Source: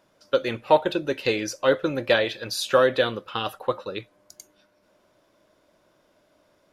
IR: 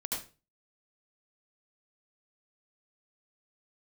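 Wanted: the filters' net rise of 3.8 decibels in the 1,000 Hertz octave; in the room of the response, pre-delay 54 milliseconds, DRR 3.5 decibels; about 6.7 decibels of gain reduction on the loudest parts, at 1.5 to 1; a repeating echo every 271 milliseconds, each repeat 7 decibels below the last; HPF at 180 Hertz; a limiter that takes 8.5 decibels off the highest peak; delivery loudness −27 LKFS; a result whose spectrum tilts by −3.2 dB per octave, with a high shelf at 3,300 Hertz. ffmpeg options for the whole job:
-filter_complex "[0:a]highpass=180,equalizer=frequency=1000:width_type=o:gain=5,highshelf=frequency=3300:gain=-4.5,acompressor=threshold=-28dB:ratio=1.5,alimiter=limit=-18dB:level=0:latency=1,aecho=1:1:271|542|813|1084|1355:0.447|0.201|0.0905|0.0407|0.0183,asplit=2[link_01][link_02];[1:a]atrim=start_sample=2205,adelay=54[link_03];[link_02][link_03]afir=irnorm=-1:irlink=0,volume=-6.5dB[link_04];[link_01][link_04]amix=inputs=2:normalize=0,volume=2dB"

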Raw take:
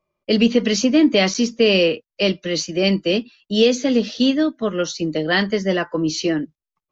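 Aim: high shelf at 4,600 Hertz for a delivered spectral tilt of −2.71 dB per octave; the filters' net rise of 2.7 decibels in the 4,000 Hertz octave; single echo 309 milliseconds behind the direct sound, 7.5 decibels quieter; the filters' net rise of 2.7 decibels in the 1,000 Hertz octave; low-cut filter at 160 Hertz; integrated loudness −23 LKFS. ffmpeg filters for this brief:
ffmpeg -i in.wav -af "highpass=160,equalizer=frequency=1000:width_type=o:gain=4,equalizer=frequency=4000:width_type=o:gain=7,highshelf=frequency=4600:gain=-7,aecho=1:1:309:0.422,volume=-5.5dB" out.wav

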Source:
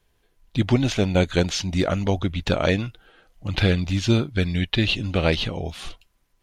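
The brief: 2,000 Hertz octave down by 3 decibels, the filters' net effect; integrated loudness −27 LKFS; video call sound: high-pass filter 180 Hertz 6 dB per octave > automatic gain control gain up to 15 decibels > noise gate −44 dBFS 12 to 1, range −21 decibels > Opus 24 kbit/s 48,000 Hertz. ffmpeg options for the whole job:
ffmpeg -i in.wav -af "highpass=frequency=180:poles=1,equalizer=frequency=2000:width_type=o:gain=-4,dynaudnorm=maxgain=15dB,agate=range=-21dB:threshold=-44dB:ratio=12,volume=-1dB" -ar 48000 -c:a libopus -b:a 24k out.opus

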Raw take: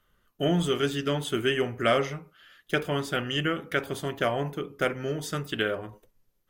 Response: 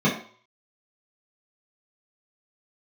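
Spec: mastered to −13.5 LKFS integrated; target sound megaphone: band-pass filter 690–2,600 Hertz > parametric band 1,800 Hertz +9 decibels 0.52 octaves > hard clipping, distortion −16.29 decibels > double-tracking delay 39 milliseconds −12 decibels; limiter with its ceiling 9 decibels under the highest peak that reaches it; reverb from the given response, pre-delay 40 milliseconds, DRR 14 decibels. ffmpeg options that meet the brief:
-filter_complex "[0:a]alimiter=limit=-19.5dB:level=0:latency=1,asplit=2[link_01][link_02];[1:a]atrim=start_sample=2205,adelay=40[link_03];[link_02][link_03]afir=irnorm=-1:irlink=0,volume=-30dB[link_04];[link_01][link_04]amix=inputs=2:normalize=0,highpass=690,lowpass=2600,equalizer=frequency=1800:width_type=o:width=0.52:gain=9,asoftclip=type=hard:threshold=-24.5dB,asplit=2[link_05][link_06];[link_06]adelay=39,volume=-12dB[link_07];[link_05][link_07]amix=inputs=2:normalize=0,volume=20.5dB"

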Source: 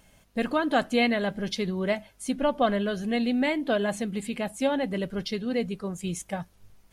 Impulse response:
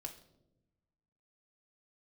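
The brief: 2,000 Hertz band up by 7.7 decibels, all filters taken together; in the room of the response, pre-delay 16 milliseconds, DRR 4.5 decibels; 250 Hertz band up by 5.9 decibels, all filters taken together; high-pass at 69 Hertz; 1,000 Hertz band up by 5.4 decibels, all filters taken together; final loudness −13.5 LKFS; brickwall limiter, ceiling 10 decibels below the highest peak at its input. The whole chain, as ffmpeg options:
-filter_complex "[0:a]highpass=69,equalizer=frequency=250:width_type=o:gain=6.5,equalizer=frequency=1000:width_type=o:gain=5.5,equalizer=frequency=2000:width_type=o:gain=7.5,alimiter=limit=-16dB:level=0:latency=1,asplit=2[link_01][link_02];[1:a]atrim=start_sample=2205,adelay=16[link_03];[link_02][link_03]afir=irnorm=-1:irlink=0,volume=-1dB[link_04];[link_01][link_04]amix=inputs=2:normalize=0,volume=10.5dB"

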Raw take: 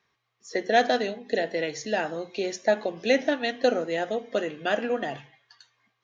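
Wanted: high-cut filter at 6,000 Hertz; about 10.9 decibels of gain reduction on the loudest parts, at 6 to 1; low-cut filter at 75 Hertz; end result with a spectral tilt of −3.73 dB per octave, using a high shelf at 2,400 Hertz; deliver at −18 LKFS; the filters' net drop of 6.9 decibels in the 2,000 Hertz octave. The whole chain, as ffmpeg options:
ffmpeg -i in.wav -af "highpass=75,lowpass=6000,equalizer=frequency=2000:width_type=o:gain=-6.5,highshelf=frequency=2400:gain=-4.5,acompressor=threshold=-29dB:ratio=6,volume=17dB" out.wav

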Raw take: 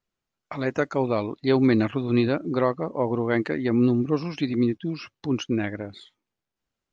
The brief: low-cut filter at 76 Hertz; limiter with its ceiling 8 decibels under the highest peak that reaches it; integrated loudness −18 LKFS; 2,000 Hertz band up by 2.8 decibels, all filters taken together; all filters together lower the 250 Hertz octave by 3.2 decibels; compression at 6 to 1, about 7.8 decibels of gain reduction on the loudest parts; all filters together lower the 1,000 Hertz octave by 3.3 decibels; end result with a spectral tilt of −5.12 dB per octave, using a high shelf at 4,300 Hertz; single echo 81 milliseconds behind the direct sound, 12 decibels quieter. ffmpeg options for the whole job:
ffmpeg -i in.wav -af "highpass=76,equalizer=frequency=250:width_type=o:gain=-3.5,equalizer=frequency=1000:width_type=o:gain=-5.5,equalizer=frequency=2000:width_type=o:gain=3.5,highshelf=frequency=4300:gain=9,acompressor=threshold=-26dB:ratio=6,alimiter=limit=-22dB:level=0:latency=1,aecho=1:1:81:0.251,volume=15.5dB" out.wav

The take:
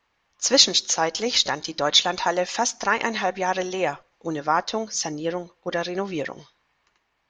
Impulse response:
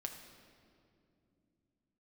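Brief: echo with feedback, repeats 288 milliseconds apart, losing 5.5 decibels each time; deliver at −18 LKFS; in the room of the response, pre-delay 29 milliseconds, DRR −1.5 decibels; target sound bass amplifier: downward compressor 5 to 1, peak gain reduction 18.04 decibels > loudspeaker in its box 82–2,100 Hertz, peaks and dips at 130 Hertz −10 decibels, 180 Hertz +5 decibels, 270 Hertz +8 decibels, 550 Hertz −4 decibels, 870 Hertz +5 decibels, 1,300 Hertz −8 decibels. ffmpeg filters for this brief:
-filter_complex "[0:a]aecho=1:1:288|576|864|1152|1440|1728|2016:0.531|0.281|0.149|0.079|0.0419|0.0222|0.0118,asplit=2[link_01][link_02];[1:a]atrim=start_sample=2205,adelay=29[link_03];[link_02][link_03]afir=irnorm=-1:irlink=0,volume=3.5dB[link_04];[link_01][link_04]amix=inputs=2:normalize=0,acompressor=threshold=-28dB:ratio=5,highpass=frequency=82:width=0.5412,highpass=frequency=82:width=1.3066,equalizer=frequency=130:width_type=q:width=4:gain=-10,equalizer=frequency=180:width_type=q:width=4:gain=5,equalizer=frequency=270:width_type=q:width=4:gain=8,equalizer=frequency=550:width_type=q:width=4:gain=-4,equalizer=frequency=870:width_type=q:width=4:gain=5,equalizer=frequency=1300:width_type=q:width=4:gain=-8,lowpass=frequency=2100:width=0.5412,lowpass=frequency=2100:width=1.3066,volume=13.5dB"

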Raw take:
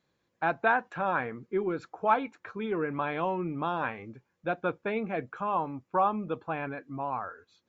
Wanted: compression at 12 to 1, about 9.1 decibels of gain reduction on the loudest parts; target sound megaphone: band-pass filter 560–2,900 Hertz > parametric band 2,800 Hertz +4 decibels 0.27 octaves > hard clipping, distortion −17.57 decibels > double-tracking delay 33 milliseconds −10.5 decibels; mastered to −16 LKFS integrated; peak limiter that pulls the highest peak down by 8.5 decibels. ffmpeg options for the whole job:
ffmpeg -i in.wav -filter_complex "[0:a]acompressor=threshold=-28dB:ratio=12,alimiter=level_in=4dB:limit=-24dB:level=0:latency=1,volume=-4dB,highpass=560,lowpass=2900,equalizer=frequency=2800:width_type=o:width=0.27:gain=4,asoftclip=type=hard:threshold=-32.5dB,asplit=2[link_01][link_02];[link_02]adelay=33,volume=-10.5dB[link_03];[link_01][link_03]amix=inputs=2:normalize=0,volume=26dB" out.wav

